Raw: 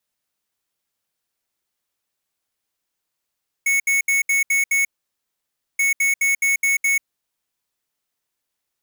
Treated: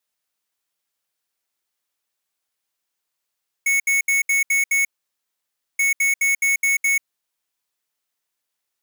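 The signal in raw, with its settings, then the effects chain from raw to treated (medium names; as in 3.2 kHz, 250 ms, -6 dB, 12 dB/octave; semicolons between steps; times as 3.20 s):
beep pattern square 2.21 kHz, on 0.14 s, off 0.07 s, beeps 6, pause 0.94 s, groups 2, -18 dBFS
bass shelf 370 Hz -8 dB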